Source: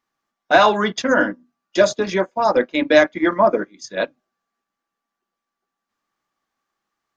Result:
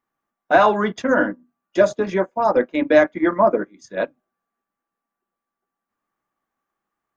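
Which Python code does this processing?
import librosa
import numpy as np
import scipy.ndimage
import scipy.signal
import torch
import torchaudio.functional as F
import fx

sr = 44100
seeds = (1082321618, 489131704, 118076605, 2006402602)

y = fx.peak_eq(x, sr, hz=4700.0, db=-12.5, octaves=1.7)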